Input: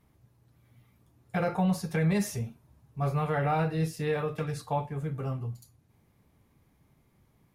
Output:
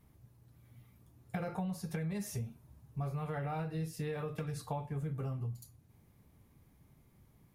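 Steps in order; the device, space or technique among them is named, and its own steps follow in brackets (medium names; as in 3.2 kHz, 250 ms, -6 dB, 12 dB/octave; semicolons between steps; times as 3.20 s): ASMR close-microphone chain (bass shelf 240 Hz +5.5 dB; compression 10:1, threshold -32 dBFS, peak gain reduction 13.5 dB; treble shelf 8.2 kHz +7 dB); trim -2.5 dB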